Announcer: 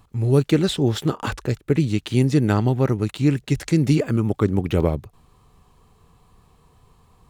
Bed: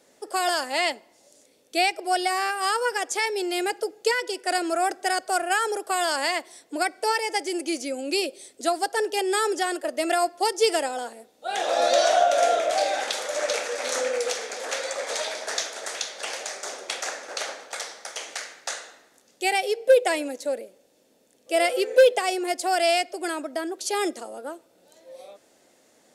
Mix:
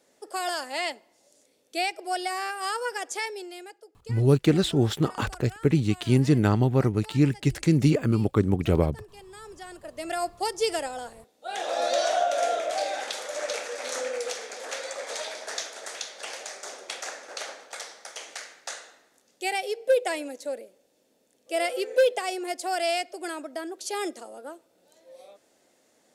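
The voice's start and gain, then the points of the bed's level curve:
3.95 s, -2.5 dB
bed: 3.22 s -5.5 dB
3.85 s -23 dB
9.32 s -23 dB
10.27 s -5 dB

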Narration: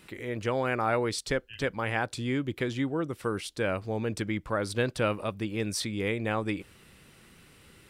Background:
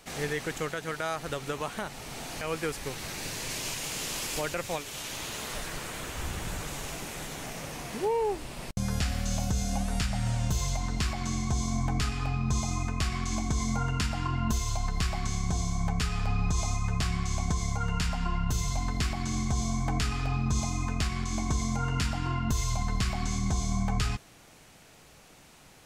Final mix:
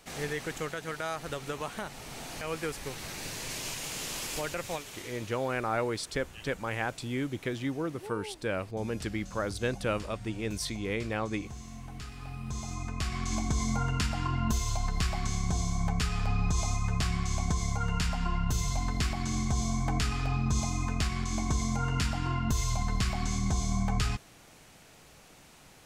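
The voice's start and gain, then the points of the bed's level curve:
4.85 s, -3.0 dB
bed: 4.75 s -2.5 dB
5.39 s -15 dB
11.88 s -15 dB
13.34 s -0.5 dB

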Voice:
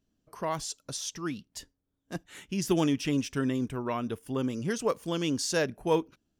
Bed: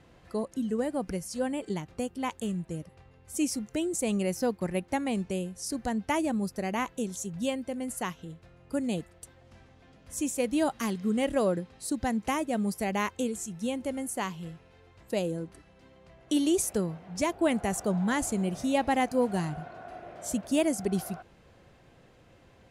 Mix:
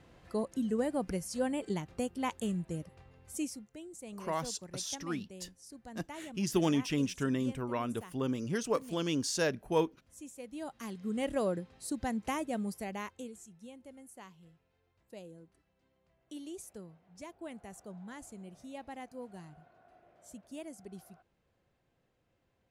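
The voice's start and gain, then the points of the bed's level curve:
3.85 s, -3.0 dB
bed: 3.25 s -2 dB
3.71 s -17.5 dB
10.46 s -17.5 dB
11.26 s -5.5 dB
12.52 s -5.5 dB
13.7 s -19 dB

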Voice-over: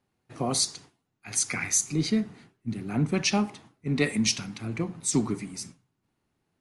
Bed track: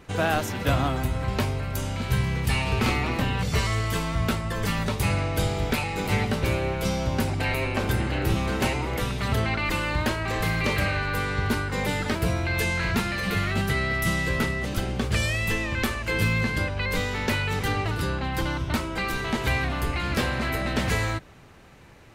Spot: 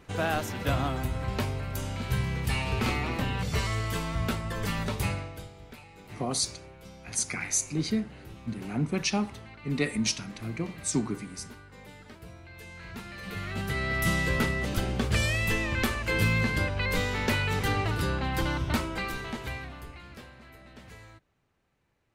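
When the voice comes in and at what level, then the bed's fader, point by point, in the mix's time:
5.80 s, -3.0 dB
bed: 5.05 s -4.5 dB
5.52 s -22 dB
12.56 s -22 dB
14.05 s -1.5 dB
18.8 s -1.5 dB
20.36 s -24 dB

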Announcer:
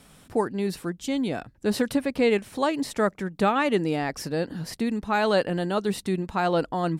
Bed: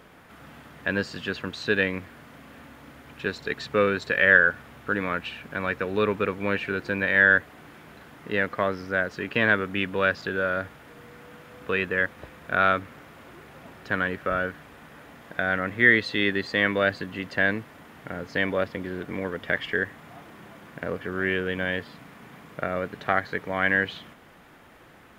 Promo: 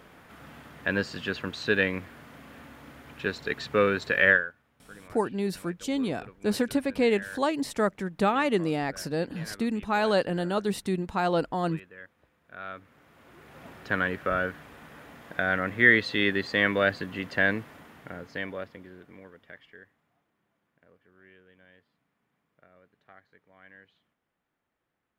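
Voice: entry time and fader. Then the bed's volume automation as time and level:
4.80 s, -2.0 dB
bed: 4.3 s -1 dB
4.53 s -22.5 dB
12.44 s -22.5 dB
13.65 s -1 dB
17.73 s -1 dB
20.27 s -30.5 dB

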